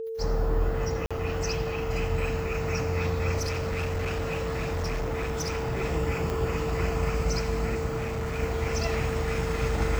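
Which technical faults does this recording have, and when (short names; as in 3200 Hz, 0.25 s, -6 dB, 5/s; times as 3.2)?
tone 450 Hz -31 dBFS
1.06–1.11 gap 46 ms
3.38–5.82 clipped -25.5 dBFS
6.3 pop
7.96–8.4 clipped -27 dBFS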